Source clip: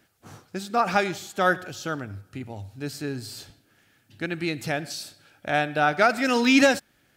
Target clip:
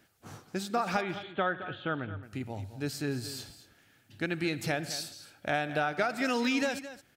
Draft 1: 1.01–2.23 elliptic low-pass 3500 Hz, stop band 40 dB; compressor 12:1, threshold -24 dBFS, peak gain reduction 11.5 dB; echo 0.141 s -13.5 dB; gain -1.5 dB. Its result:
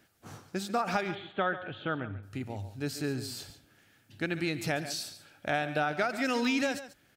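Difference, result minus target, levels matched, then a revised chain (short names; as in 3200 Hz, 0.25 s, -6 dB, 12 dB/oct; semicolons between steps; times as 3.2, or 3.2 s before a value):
echo 77 ms early
1.01–2.23 elliptic low-pass 3500 Hz, stop band 40 dB; compressor 12:1, threshold -24 dBFS, peak gain reduction 11.5 dB; echo 0.218 s -13.5 dB; gain -1.5 dB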